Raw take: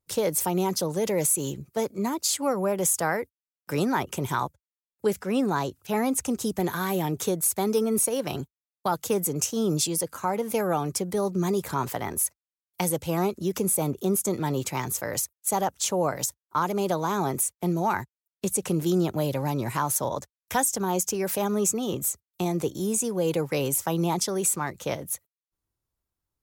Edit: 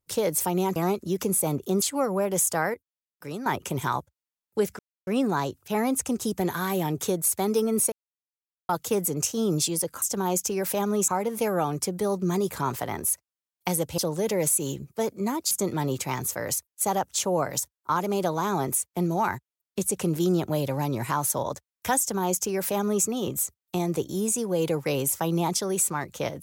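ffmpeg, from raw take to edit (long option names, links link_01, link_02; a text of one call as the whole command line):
ffmpeg -i in.wav -filter_complex "[0:a]asplit=12[link_01][link_02][link_03][link_04][link_05][link_06][link_07][link_08][link_09][link_10][link_11][link_12];[link_01]atrim=end=0.762[link_13];[link_02]atrim=start=13.108:end=14.172[link_14];[link_03]atrim=start=2.288:end=3.212[link_15];[link_04]atrim=start=3.208:end=3.932,asetpts=PTS-STARTPTS,volume=-9.5dB[link_16];[link_05]atrim=start=3.928:end=5.26,asetpts=PTS-STARTPTS,afade=type=out:start_time=1.328:duration=0.004:curve=hsin,apad=pad_dur=0.28[link_17];[link_06]atrim=start=5.26:end=8.11,asetpts=PTS-STARTPTS,afade=type=in:duration=0.004:curve=hsin,afade=type=out:start_time=2.846:duration=0.004:curve=hsin[link_18];[link_07]atrim=start=8.11:end=8.88,asetpts=PTS-STARTPTS,volume=0[link_19];[link_08]atrim=start=8.88:end=10.212,asetpts=PTS-STARTPTS,afade=type=in:duration=0.004:curve=hsin[link_20];[link_09]atrim=start=20.648:end=21.712[link_21];[link_10]atrim=start=10.208:end=13.112[link_22];[link_11]atrim=start=0.758:end=2.292[link_23];[link_12]atrim=start=14.168[link_24];[link_13][link_14]acrossfade=duration=0.004:curve1=hsin:curve2=hsin[link_25];[link_25][link_15]acrossfade=duration=0.004:curve1=hsin:curve2=hsin[link_26];[link_26][link_16]acrossfade=duration=0.004:curve1=hsin:curve2=hsin[link_27];[link_17][link_18][link_19][link_20]concat=n=4:v=0:a=1[link_28];[link_27][link_28]acrossfade=duration=0.004:curve1=hsin:curve2=hsin[link_29];[link_29][link_21]acrossfade=duration=0.004:curve1=hsin:curve2=hsin[link_30];[link_30][link_22]acrossfade=duration=0.004:curve1=hsin:curve2=hsin[link_31];[link_31][link_23]acrossfade=duration=0.004:curve1=hsin:curve2=hsin[link_32];[link_32][link_24]acrossfade=duration=0.004:curve1=hsin:curve2=hsin" out.wav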